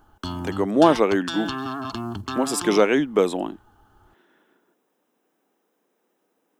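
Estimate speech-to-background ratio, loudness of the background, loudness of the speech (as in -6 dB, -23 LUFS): 10.0 dB, -31.5 LUFS, -21.5 LUFS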